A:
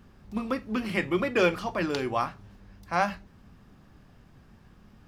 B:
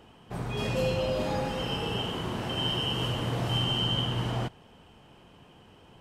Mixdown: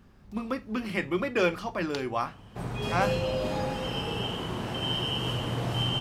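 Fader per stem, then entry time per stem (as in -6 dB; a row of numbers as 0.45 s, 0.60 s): -2.0 dB, -0.5 dB; 0.00 s, 2.25 s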